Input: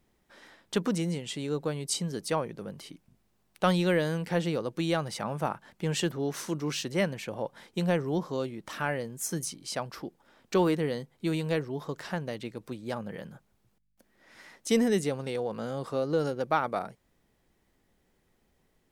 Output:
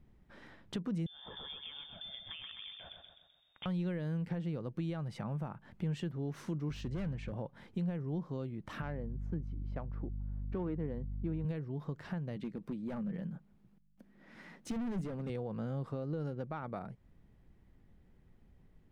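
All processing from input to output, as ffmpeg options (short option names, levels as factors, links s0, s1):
-filter_complex "[0:a]asettb=1/sr,asplit=3[s0][s1][s2];[s0]atrim=end=1.064[s3];[s1]atrim=start=1.06:end=3.66,asetpts=PTS-STARTPTS,afade=t=in:d=0.004:c=qsin,afade=t=out:st=2.596:d=0.004:c=qsin,acompressor=threshold=0.0158:ratio=10:attack=3.2:release=140:knee=1:detection=peak,aecho=1:1:128|256|384|512|640|768:0.531|0.26|0.127|0.0625|0.0306|0.015,atrim=end_sample=114660,lowpass=f=3100:t=q:w=0.5098,lowpass=f=3100:t=q:w=0.6013,lowpass=f=3100:t=q:w=0.9,lowpass=f=3100:t=q:w=2.563,afreqshift=-3700[s4];[s2]atrim=start=3.656[s5];[s3][s4]acrossfade=d=0.004:c1=hsin:c2=qsin[s6];[s6][s5]acrossfade=d=0.004:c1=qsin:c2=hsin,asettb=1/sr,asplit=3[s7][s8][s9];[s7]atrim=end=6.694[s10];[s8]atrim=start=6.69:end=7.32,asetpts=PTS-STARTPTS,afade=t=in:d=0.004:c=qsin,afade=t=out:st=0.626:d=0.004:c=qsin,lowpass=f=8600:w=0.5412,lowpass=f=8600:w=1.3066,volume=35.5,asoftclip=hard,volume=0.0282,aeval=exprs='val(0)+0.00398*(sin(2*PI*50*n/s)+sin(2*PI*2*50*n/s)/2+sin(2*PI*3*50*n/s)/3+sin(2*PI*4*50*n/s)/4+sin(2*PI*5*50*n/s)/5)':c=same[s11];[s9]atrim=start=7.316[s12];[s10][s11]acrossfade=d=0.004:c1=hsin:c2=qsin[s13];[s13][s12]acrossfade=d=0.004:c1=qsin:c2=hsin,asettb=1/sr,asplit=3[s14][s15][s16];[s14]atrim=end=8.824[s17];[s15]atrim=start=8.82:end=11.45,asetpts=PTS-STARTPTS,afade=t=in:d=0.004:c=qsin,afade=t=out:st=2.626:d=0.004:c=qsin,highpass=170,aeval=exprs='val(0)+0.00708*(sin(2*PI*50*n/s)+sin(2*PI*2*50*n/s)/2+sin(2*PI*3*50*n/s)/3+sin(2*PI*4*50*n/s)/4+sin(2*PI*5*50*n/s)/5)':c=same,adynamicsmooth=sensitivity=1:basefreq=1200[s18];[s16]atrim=start=11.446[s19];[s17][s18]acrossfade=d=0.004:c1=hsin:c2=qsin[s20];[s20][s19]acrossfade=d=0.004:c1=qsin:c2=hsin,asettb=1/sr,asplit=3[s21][s22][s23];[s21]atrim=end=12.364[s24];[s22]atrim=start=12.36:end=15.3,asetpts=PTS-STARTPTS,afade=t=in:d=0.004:c=qsin,afade=t=out:st=2.936:d=0.004:c=qsin,lowshelf=f=140:t=q:w=3:g=-6.5,asoftclip=type=hard:threshold=0.0299[s25];[s23]atrim=start=15.296[s26];[s24][s25]acrossfade=d=0.004:c1=hsin:c2=qsin[s27];[s27][s26]acrossfade=d=0.004:c1=qsin:c2=hsin,alimiter=limit=0.0841:level=0:latency=1:release=335,bass=f=250:g=14,treble=f=4000:g=-12,acompressor=threshold=0.0112:ratio=2,volume=0.75"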